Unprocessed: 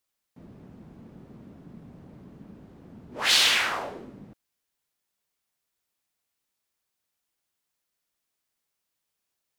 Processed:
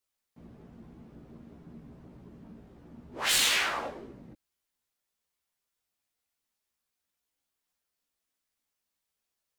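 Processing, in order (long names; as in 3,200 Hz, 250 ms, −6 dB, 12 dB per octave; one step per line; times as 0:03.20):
phase distortion by the signal itself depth 0.08 ms
multi-voice chorus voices 6, 0.54 Hz, delay 15 ms, depth 2.6 ms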